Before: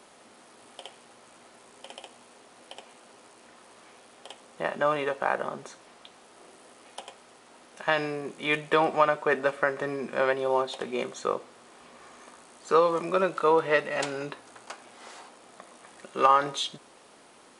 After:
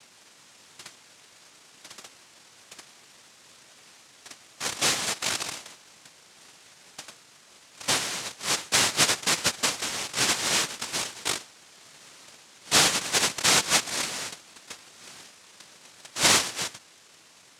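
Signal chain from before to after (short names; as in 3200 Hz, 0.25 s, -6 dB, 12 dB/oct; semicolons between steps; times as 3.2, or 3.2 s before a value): noise vocoder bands 1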